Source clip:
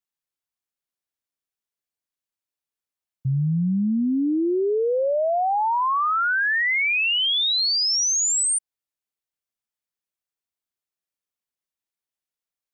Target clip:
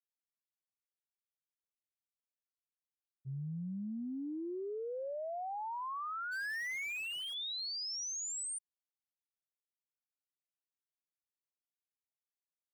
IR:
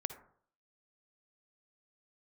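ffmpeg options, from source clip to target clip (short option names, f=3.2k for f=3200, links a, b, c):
-filter_complex "[0:a]asplit=3[a][b][c];[a]afade=t=out:st=6.31:d=0.02[d];[b]asplit=2[e][f];[f]highpass=f=720:p=1,volume=31dB,asoftclip=type=tanh:threshold=-18dB[g];[e][g]amix=inputs=2:normalize=0,lowpass=f=4.4k:p=1,volume=-6dB,afade=t=in:st=6.31:d=0.02,afade=t=out:st=7.33:d=0.02[h];[c]afade=t=in:st=7.33:d=0.02[i];[d][h][i]amix=inputs=3:normalize=0,agate=range=-33dB:threshold=-8dB:ratio=3:detection=peak,volume=4.5dB"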